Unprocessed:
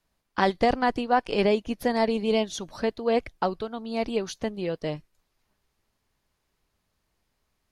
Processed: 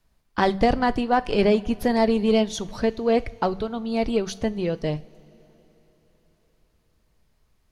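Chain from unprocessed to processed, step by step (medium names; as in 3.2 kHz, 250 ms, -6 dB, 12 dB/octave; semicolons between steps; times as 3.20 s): bass shelf 150 Hz +10.5 dB; de-hum 96.55 Hz, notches 2; in parallel at -8 dB: saturation -23 dBFS, distortion -8 dB; on the sum: two-slope reverb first 0.37 s, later 4.3 s, from -18 dB, DRR 15 dB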